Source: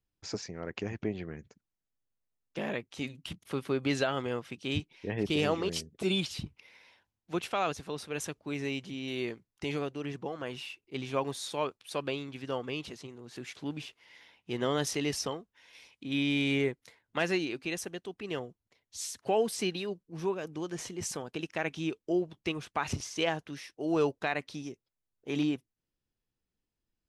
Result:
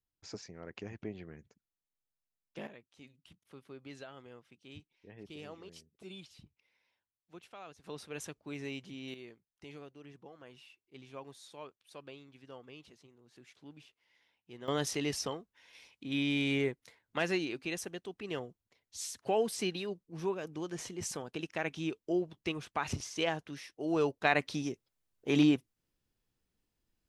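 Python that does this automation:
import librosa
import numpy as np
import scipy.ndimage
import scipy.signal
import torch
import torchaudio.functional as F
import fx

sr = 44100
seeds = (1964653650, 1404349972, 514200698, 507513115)

y = fx.gain(x, sr, db=fx.steps((0.0, -8.0), (2.67, -19.0), (7.84, -6.5), (9.14, -15.5), (14.68, -2.5), (24.25, 4.5)))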